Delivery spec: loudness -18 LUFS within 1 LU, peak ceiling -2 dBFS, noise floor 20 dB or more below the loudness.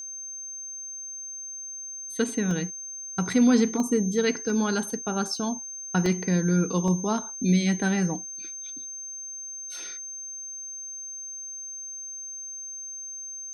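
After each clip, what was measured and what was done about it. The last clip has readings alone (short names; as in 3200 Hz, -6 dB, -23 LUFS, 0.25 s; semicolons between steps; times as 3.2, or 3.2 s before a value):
dropouts 6; longest dropout 1.3 ms; steady tone 6300 Hz; tone level -35 dBFS; loudness -28.0 LUFS; peak -10.5 dBFS; loudness target -18.0 LUFS
-> interpolate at 2.51/3.8/4.5/5.36/6.06/6.88, 1.3 ms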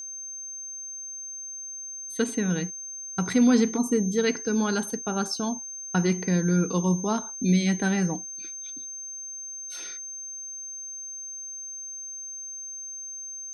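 dropouts 0; steady tone 6300 Hz; tone level -35 dBFS
-> notch 6300 Hz, Q 30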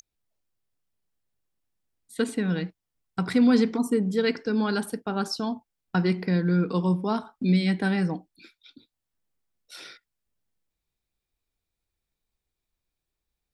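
steady tone none; loudness -25.5 LUFS; peak -11.0 dBFS; loudness target -18.0 LUFS
-> gain +7.5 dB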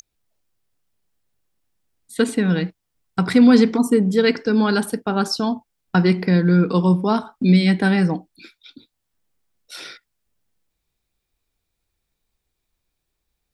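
loudness -18.0 LUFS; peak -3.5 dBFS; noise floor -78 dBFS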